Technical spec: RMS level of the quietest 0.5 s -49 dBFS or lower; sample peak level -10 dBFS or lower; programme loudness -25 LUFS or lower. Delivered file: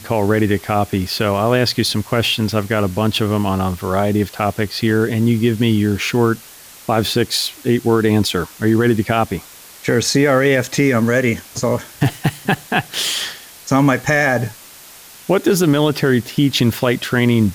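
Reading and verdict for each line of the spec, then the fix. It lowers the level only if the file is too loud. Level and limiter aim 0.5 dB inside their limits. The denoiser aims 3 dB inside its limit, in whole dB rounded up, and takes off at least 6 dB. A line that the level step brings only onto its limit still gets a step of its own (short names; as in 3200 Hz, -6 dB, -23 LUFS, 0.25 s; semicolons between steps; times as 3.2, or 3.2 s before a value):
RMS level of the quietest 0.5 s -40 dBFS: fail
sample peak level -4.5 dBFS: fail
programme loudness -17.0 LUFS: fail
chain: denoiser 6 dB, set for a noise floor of -40 dBFS; gain -8.5 dB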